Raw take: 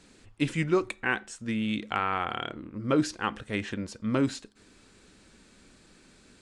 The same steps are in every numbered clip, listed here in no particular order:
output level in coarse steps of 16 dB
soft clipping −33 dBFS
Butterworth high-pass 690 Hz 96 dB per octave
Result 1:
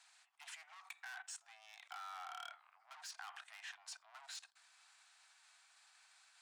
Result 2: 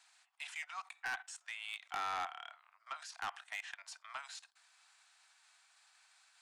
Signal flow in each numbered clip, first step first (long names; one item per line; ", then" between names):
soft clipping, then output level in coarse steps, then Butterworth high-pass
output level in coarse steps, then Butterworth high-pass, then soft clipping